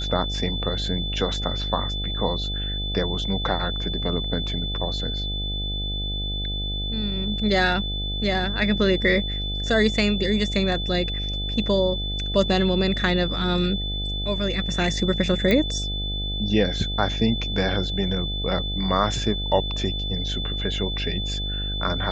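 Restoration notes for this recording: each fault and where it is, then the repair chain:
buzz 50 Hz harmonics 16 -29 dBFS
tone 3500 Hz -29 dBFS
15.51 pop -9 dBFS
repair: de-click; de-hum 50 Hz, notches 16; notch 3500 Hz, Q 30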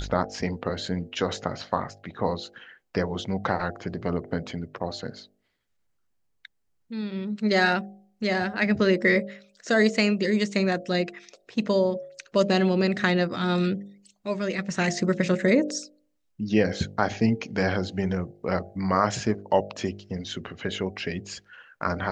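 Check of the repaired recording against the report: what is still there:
none

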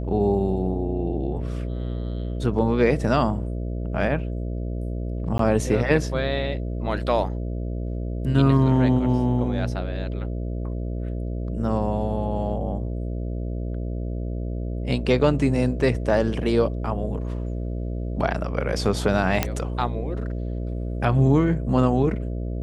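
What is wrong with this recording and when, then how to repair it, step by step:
buzz 60 Hz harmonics 11 -28 dBFS
5.38–5.39 gap 13 ms
19.43 pop -5 dBFS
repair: de-click; de-hum 60 Hz, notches 11; interpolate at 5.38, 13 ms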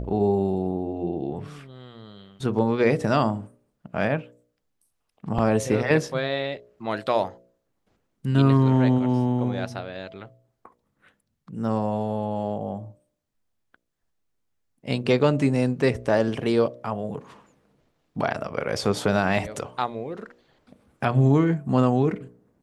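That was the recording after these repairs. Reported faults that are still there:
none

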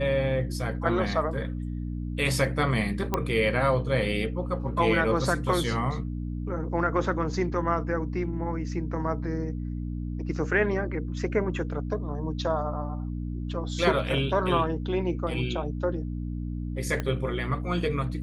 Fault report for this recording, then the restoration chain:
hum 60 Hz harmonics 5 -32 dBFS
3.14 pop -11 dBFS
17 pop -16 dBFS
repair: de-click; de-hum 60 Hz, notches 5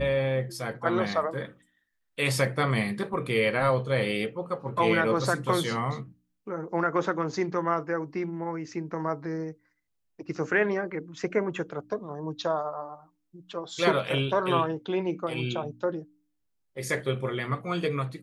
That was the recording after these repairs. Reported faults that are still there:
17 pop

